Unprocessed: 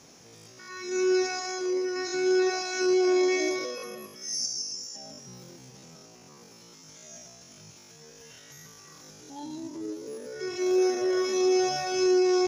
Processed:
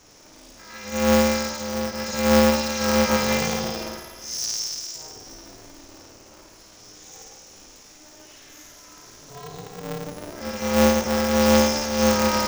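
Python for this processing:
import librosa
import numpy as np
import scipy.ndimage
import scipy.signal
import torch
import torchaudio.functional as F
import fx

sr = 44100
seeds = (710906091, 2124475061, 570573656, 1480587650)

y = fx.cheby_harmonics(x, sr, harmonics=(3,), levels_db=(-16,), full_scale_db=-15.0)
y = fx.room_flutter(y, sr, wall_m=9.2, rt60_s=1.2)
y = y * np.sign(np.sin(2.0 * np.pi * 150.0 * np.arange(len(y)) / sr))
y = y * 10.0 ** (5.5 / 20.0)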